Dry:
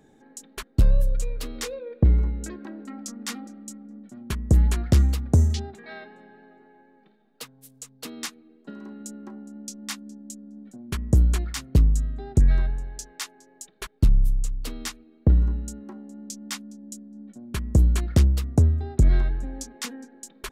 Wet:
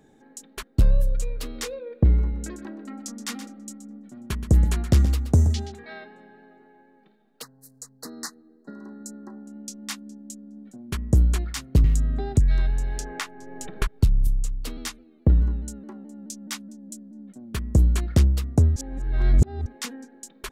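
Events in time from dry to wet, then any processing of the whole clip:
0:02.21–0:05.85: single-tap delay 124 ms −12 dB
0:07.42–0:09.47: Chebyshev band-stop filter 1,900–4,100 Hz, order 4
0:11.84–0:14.27: multiband upward and downward compressor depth 100%
0:14.77–0:17.61: pitch modulation by a square or saw wave saw down 4.7 Hz, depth 100 cents
0:18.76–0:19.66: reverse

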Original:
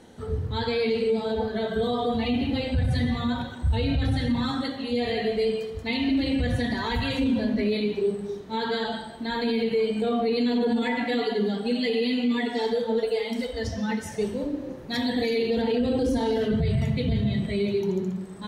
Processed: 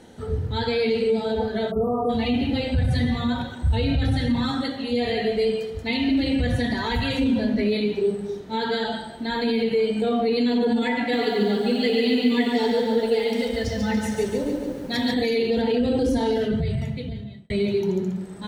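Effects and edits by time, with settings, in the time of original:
0:01.71–0:02.09: time-frequency box erased 1,400–8,400 Hz
0:10.99–0:15.14: feedback echo at a low word length 142 ms, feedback 55%, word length 9 bits, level −4.5 dB
0:16.29–0:17.50: fade out
whole clip: notch filter 1,100 Hz, Q 10; level +2.5 dB

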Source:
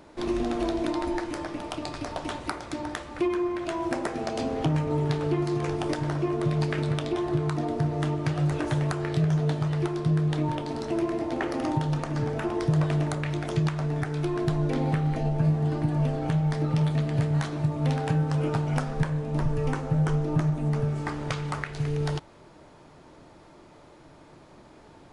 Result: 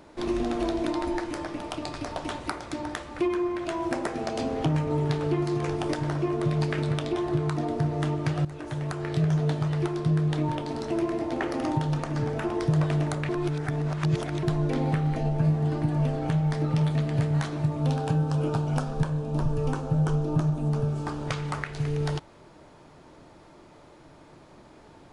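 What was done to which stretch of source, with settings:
0:08.45–0:09.25: fade in, from −14.5 dB
0:13.29–0:14.43: reverse
0:17.82–0:21.27: parametric band 2,000 Hz −13 dB 0.4 octaves

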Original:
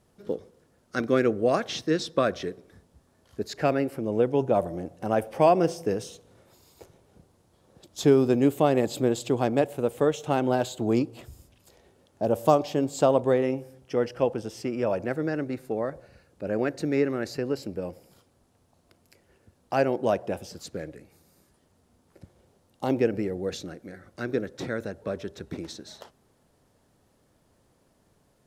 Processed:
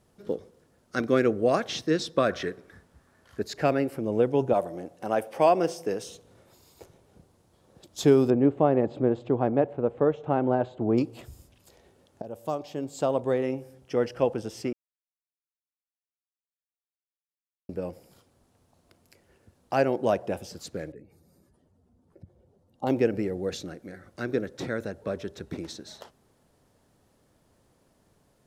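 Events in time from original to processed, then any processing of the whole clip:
0:02.29–0:03.42: parametric band 1,600 Hz +9.5 dB 1.1 octaves
0:04.53–0:06.07: high-pass filter 330 Hz 6 dB per octave
0:08.30–0:10.98: low-pass filter 1,400 Hz
0:12.22–0:13.99: fade in, from −17 dB
0:14.73–0:17.69: silence
0:20.92–0:22.87: expanding power law on the bin magnitudes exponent 1.6

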